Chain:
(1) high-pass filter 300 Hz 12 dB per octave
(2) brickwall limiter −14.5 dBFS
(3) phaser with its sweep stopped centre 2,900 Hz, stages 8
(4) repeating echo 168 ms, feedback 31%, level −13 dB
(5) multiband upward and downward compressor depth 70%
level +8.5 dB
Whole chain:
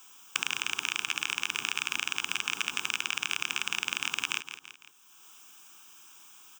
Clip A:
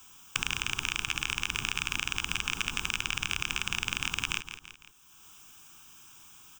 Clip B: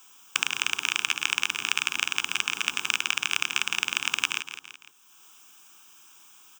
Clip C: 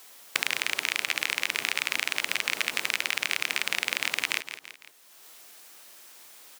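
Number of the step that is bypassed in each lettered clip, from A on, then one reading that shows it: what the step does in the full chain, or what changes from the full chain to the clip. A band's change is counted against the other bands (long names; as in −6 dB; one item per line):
1, 125 Hz band +15.5 dB
2, average gain reduction 2.0 dB
3, change in integrated loudness +3.0 LU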